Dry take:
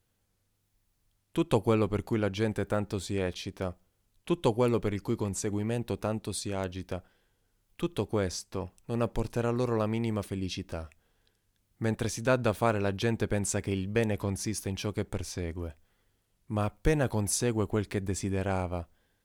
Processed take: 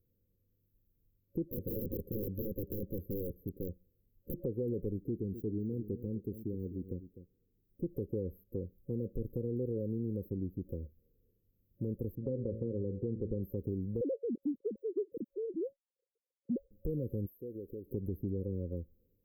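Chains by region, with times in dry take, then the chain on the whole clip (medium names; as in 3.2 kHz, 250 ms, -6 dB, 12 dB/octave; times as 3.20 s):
1.43–4.38 s: LFO notch saw up 9.8 Hz 960–3500 Hz + integer overflow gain 25.5 dB
4.98–7.84 s: static phaser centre 2.9 kHz, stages 8 + overdrive pedal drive 18 dB, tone 4.1 kHz, clips at -21 dBFS + delay 252 ms -13.5 dB
12.15–13.43 s: low-pass 2.4 kHz + de-hum 55.28 Hz, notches 30
14.01–16.71 s: formants replaced by sine waves + waveshaping leveller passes 1 + lamp-driven phase shifter 1.6 Hz
17.26–17.91 s: tone controls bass -11 dB, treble +5 dB + compression 3:1, threshold -42 dBFS
whole clip: FFT band-reject 550–12000 Hz; peak limiter -22 dBFS; compression 2:1, threshold -35 dBFS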